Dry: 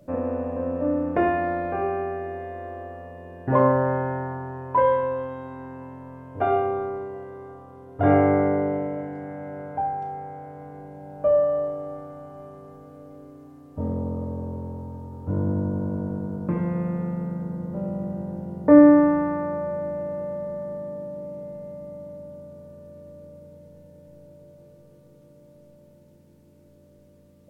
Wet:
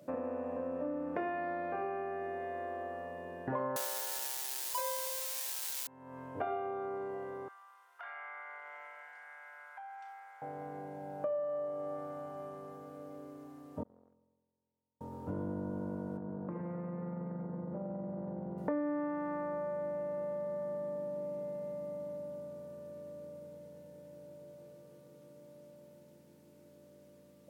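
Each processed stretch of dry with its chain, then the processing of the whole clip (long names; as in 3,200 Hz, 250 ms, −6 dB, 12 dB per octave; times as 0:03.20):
0:03.76–0:05.87: spike at every zero crossing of −17 dBFS + high-pass filter 420 Hz 24 dB per octave + high-shelf EQ 2,100 Hz +11.5 dB
0:07.48–0:10.42: high-pass filter 1,200 Hz 24 dB per octave + downward compressor 5 to 1, threshold −43 dBFS
0:13.83–0:15.01: noise gate −23 dBFS, range −48 dB + level that may fall only so fast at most 40 dB per second
0:16.17–0:18.58: low-pass filter 1,300 Hz + downward compressor, threshold −29 dBFS + highs frequency-modulated by the lows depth 0.11 ms
whole clip: high-pass filter 140 Hz 12 dB per octave; low-shelf EQ 460 Hz −6 dB; downward compressor 4 to 1, threshold −36 dBFS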